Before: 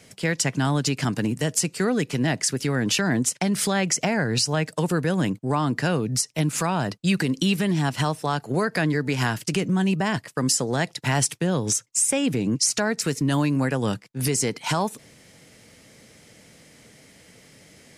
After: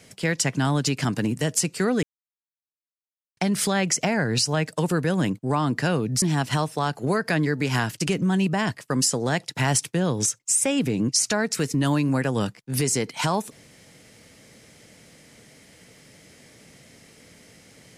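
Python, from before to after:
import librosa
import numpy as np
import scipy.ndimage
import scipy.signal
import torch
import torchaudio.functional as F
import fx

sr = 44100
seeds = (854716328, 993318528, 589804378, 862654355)

y = fx.edit(x, sr, fx.silence(start_s=2.03, length_s=1.34),
    fx.cut(start_s=6.22, length_s=1.47), tone=tone)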